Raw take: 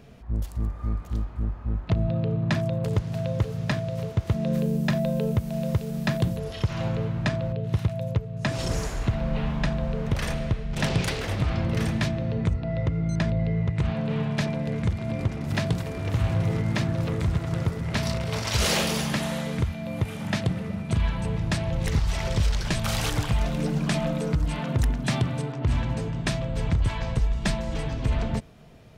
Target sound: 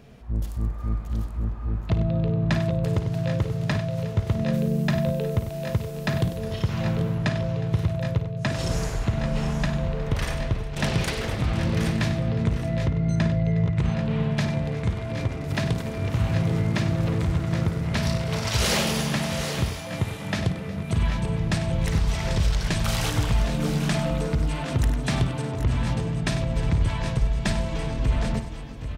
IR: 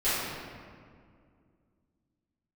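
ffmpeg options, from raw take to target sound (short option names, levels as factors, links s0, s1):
-af "aecho=1:1:54|97|362|767|789:0.266|0.282|0.119|0.251|0.299"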